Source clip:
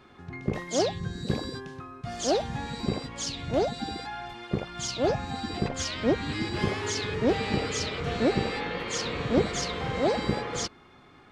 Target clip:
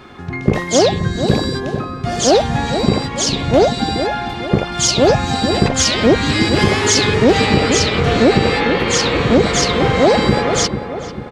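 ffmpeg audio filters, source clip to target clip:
-filter_complex "[0:a]asettb=1/sr,asplit=3[a][b][c];[a]atrim=end=4.724[d];[b]atrim=start=4.72:end=7.46,asetpts=PTS-STARTPTS,afade=t=in:d=0.004:c=qsin,afade=t=out:st=2.736:d=0.004:c=qsin,highshelf=f=4.9k:g=6[e];[c]atrim=start=7.456[f];[d][e]acrossfade=d=0.004:c1=hsin:c2=qsin[g];[g][f]acrossfade=d=0.004:c1=qsin:c2=hsin,asplit=2[h][i];[i]adelay=444,lowpass=f=1.5k:p=1,volume=-10dB,asplit=2[j][k];[k]adelay=444,lowpass=f=1.5k:p=1,volume=0.51,asplit=2[l][m];[m]adelay=444,lowpass=f=1.5k:p=1,volume=0.51,asplit=2[n][o];[o]adelay=444,lowpass=f=1.5k:p=1,volume=0.51,asplit=2[p][q];[q]adelay=444,lowpass=f=1.5k:p=1,volume=0.51,asplit=2[r][s];[s]adelay=444,lowpass=f=1.5k:p=1,volume=0.51[t];[h][j][l][n][p][r][t]amix=inputs=7:normalize=0,alimiter=level_in=16dB:limit=-1dB:release=50:level=0:latency=1,volume=-1dB"

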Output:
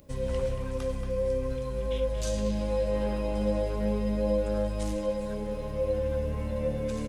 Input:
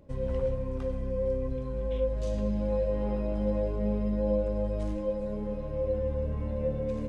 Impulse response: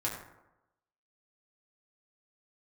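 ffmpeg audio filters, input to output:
-filter_complex "[0:a]crystalizer=i=6:c=0,asplit=2[a][b];[b]adelay=230,highpass=300,lowpass=3.4k,asoftclip=type=hard:threshold=-26.5dB,volume=-6dB[c];[a][c]amix=inputs=2:normalize=0"

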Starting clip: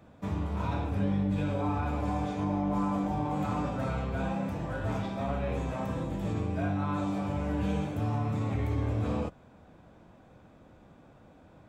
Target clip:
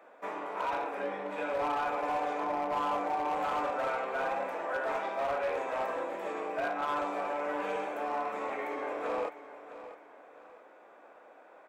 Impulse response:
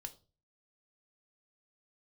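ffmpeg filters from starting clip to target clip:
-af "highpass=f=430:w=0.5412,highpass=f=430:w=1.3066,highshelf=f=2.8k:t=q:w=1.5:g=-8,asoftclip=type=hard:threshold=-31.5dB,aecho=1:1:658|1316|1974:0.2|0.0638|0.0204,volume=4.5dB"

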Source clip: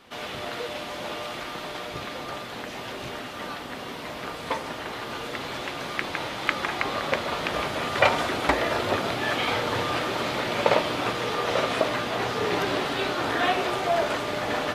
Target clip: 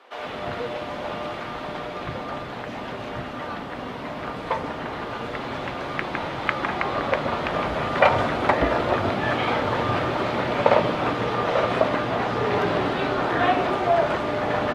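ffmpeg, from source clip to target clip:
-filter_complex "[0:a]lowpass=f=1.1k:p=1,acrossover=split=380[a][b];[a]adelay=130[c];[c][b]amix=inputs=2:normalize=0,volume=6.5dB"

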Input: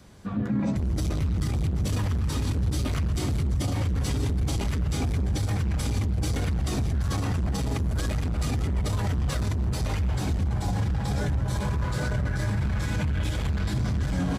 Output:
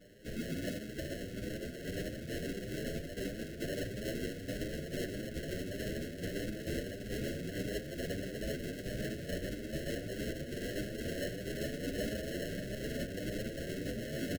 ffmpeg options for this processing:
-filter_complex "[0:a]highpass=420,afftfilt=real='hypot(re,im)*cos(2*PI*random(0))':imag='hypot(re,im)*sin(2*PI*random(1))':win_size=512:overlap=0.75,acrusher=samples=37:mix=1:aa=0.000001,asoftclip=type=tanh:threshold=-36dB,asuperstop=centerf=980:order=12:qfactor=1.2,asplit=2[a][b];[b]adelay=966,lowpass=f=1.2k:p=1,volume=-7.5dB,asplit=2[c][d];[d]adelay=966,lowpass=f=1.2k:p=1,volume=0.46,asplit=2[e][f];[f]adelay=966,lowpass=f=1.2k:p=1,volume=0.46,asplit=2[g][h];[h]adelay=966,lowpass=f=1.2k:p=1,volume=0.46,asplit=2[i][j];[j]adelay=966,lowpass=f=1.2k:p=1,volume=0.46[k];[a][c][e][g][i][k]amix=inputs=6:normalize=0,asplit=2[l][m];[m]adelay=8.3,afreqshift=1.6[n];[l][n]amix=inputs=2:normalize=1,volume=9.5dB"

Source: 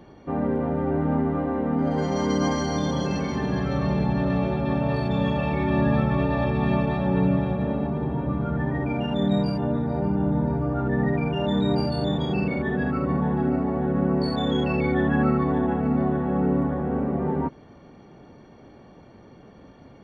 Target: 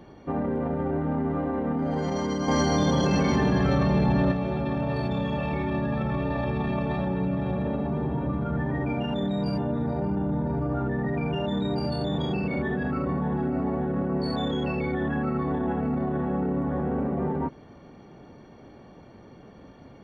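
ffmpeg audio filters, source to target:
-filter_complex "[0:a]alimiter=limit=-20dB:level=0:latency=1:release=21,asettb=1/sr,asplit=3[a][b][c];[a]atrim=end=2.484[d];[b]atrim=start=2.48:end=4.32,asetpts=PTS-STARTPTS,afade=t=in:d=0.004:c=qsin,afade=t=out:st=1.836:d=0.004:c=qsin,acontrast=39[e];[c]atrim=start=4.316[f];[d][e]acrossfade=d=0.004:c1=hsin:c2=qsin[g];[g][f]acrossfade=d=0.004:c1=qsin:c2=hsin"

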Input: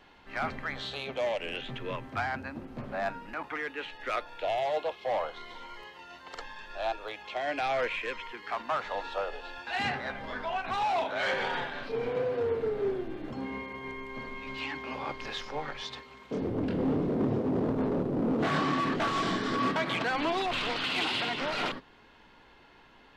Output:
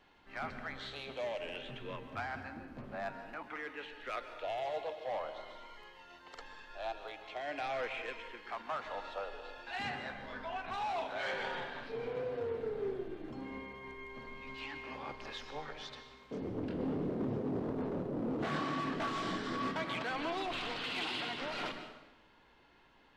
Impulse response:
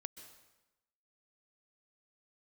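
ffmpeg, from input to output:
-filter_complex "[1:a]atrim=start_sample=2205[a];[0:a][a]afir=irnorm=-1:irlink=0,volume=-3.5dB"

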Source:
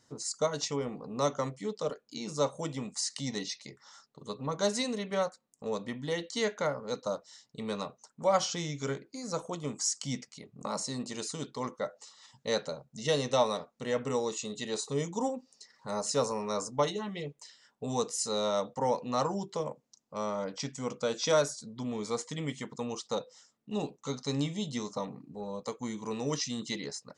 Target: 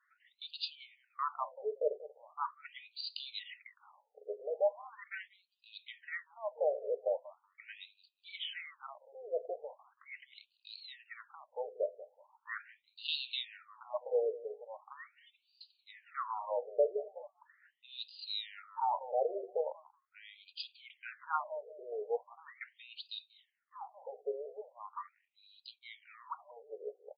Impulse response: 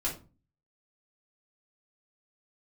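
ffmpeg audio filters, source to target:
-filter_complex "[0:a]asplit=2[a][b];[b]adelay=186,lowpass=f=1.6k:p=1,volume=-16dB,asplit=2[c][d];[d]adelay=186,lowpass=f=1.6k:p=1,volume=0.25[e];[a][c][e]amix=inputs=3:normalize=0,afftfilt=real='re*between(b*sr/1024,510*pow(3500/510,0.5+0.5*sin(2*PI*0.4*pts/sr))/1.41,510*pow(3500/510,0.5+0.5*sin(2*PI*0.4*pts/sr))*1.41)':imag='im*between(b*sr/1024,510*pow(3500/510,0.5+0.5*sin(2*PI*0.4*pts/sr))/1.41,510*pow(3500/510,0.5+0.5*sin(2*PI*0.4*pts/sr))*1.41)':win_size=1024:overlap=0.75,volume=1dB"

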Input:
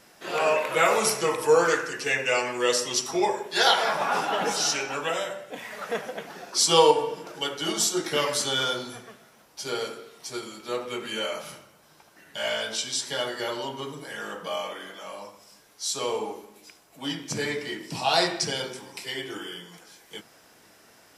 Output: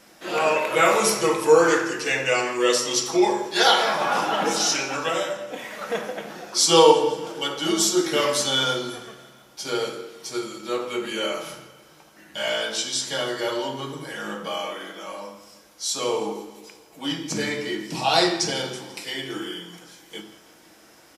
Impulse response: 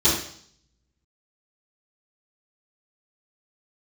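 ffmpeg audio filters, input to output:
-filter_complex "[0:a]aecho=1:1:165|330|495|660|825:0.106|0.0625|0.0369|0.0218|0.0128,asplit=2[a][b];[1:a]atrim=start_sample=2205[c];[b][c]afir=irnorm=-1:irlink=0,volume=-22.5dB[d];[a][d]amix=inputs=2:normalize=0,volume=2dB"

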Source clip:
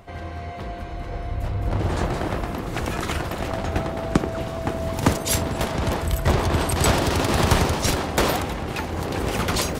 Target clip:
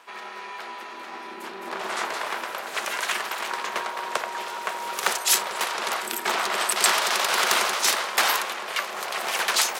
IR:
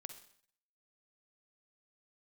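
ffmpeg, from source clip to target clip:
-af "volume=12.5dB,asoftclip=hard,volume=-12.5dB,aeval=exprs='val(0)*sin(2*PI*290*n/s)':c=same,highpass=1.1k,volume=7.5dB"

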